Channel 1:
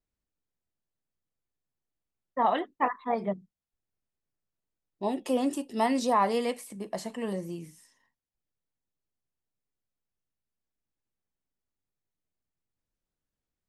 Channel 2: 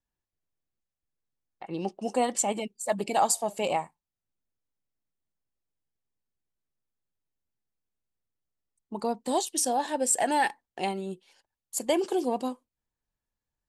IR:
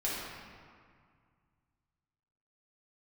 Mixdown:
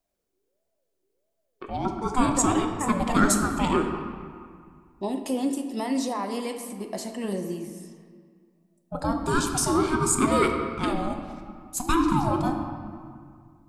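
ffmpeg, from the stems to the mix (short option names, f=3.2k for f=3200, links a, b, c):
-filter_complex "[0:a]highshelf=f=3.6k:g=9.5,alimiter=limit=-22dB:level=0:latency=1:release=382,volume=-2.5dB,asplit=2[a][b];[b]volume=-10dB[c];[1:a]aeval=exprs='val(0)*sin(2*PI*520*n/s+520*0.3/1.5*sin(2*PI*1.5*n/s))':c=same,volume=1dB,asplit=2[d][e];[e]volume=-6.5dB[f];[2:a]atrim=start_sample=2205[g];[c][f]amix=inputs=2:normalize=0[h];[h][g]afir=irnorm=-1:irlink=0[i];[a][d][i]amix=inputs=3:normalize=0,equalizer=f=300:w=1.7:g=8.5"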